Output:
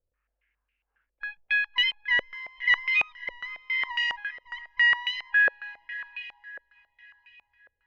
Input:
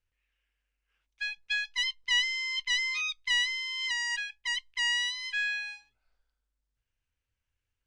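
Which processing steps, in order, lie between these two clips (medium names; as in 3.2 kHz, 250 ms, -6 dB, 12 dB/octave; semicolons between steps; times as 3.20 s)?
echo that smears into a reverb 588 ms, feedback 41%, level -13.5 dB; step-sequenced low-pass 7.3 Hz 540–2600 Hz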